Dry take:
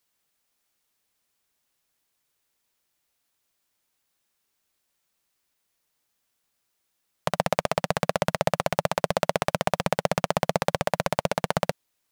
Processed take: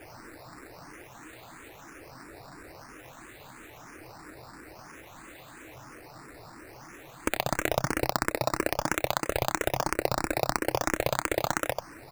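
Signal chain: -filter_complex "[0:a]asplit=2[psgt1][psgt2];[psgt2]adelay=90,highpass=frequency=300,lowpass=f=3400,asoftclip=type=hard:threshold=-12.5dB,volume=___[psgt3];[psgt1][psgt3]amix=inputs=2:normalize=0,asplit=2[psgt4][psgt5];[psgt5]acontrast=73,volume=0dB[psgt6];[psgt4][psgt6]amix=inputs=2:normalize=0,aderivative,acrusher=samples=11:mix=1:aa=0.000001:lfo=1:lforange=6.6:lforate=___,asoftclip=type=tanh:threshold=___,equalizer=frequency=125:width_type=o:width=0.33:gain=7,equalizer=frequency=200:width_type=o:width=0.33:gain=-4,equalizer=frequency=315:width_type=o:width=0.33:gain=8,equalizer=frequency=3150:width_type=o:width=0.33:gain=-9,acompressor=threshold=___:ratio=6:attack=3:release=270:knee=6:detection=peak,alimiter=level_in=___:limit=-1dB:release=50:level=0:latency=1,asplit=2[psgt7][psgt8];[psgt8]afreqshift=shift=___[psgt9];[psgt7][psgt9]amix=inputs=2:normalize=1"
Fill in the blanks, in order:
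-9dB, 0.51, -9.5dB, -34dB, 18dB, 3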